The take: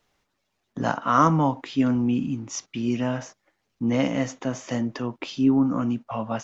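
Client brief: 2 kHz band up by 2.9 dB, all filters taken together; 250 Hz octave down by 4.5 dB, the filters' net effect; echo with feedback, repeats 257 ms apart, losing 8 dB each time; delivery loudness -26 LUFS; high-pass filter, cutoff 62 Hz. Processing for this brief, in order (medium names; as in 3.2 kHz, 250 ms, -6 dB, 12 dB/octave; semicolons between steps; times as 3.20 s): high-pass 62 Hz; peaking EQ 250 Hz -5 dB; peaking EQ 2 kHz +4 dB; feedback delay 257 ms, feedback 40%, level -8 dB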